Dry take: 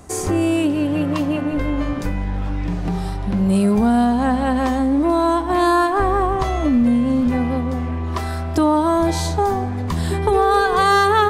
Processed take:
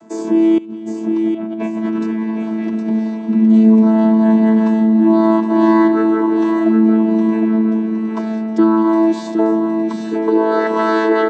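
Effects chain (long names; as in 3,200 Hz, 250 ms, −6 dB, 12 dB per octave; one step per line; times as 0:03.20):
channel vocoder with a chord as carrier bare fifth, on A3
0:00.58–0:02.73: compressor whose output falls as the input rises −28 dBFS, ratio −1
repeating echo 764 ms, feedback 37%, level −6.5 dB
level +4 dB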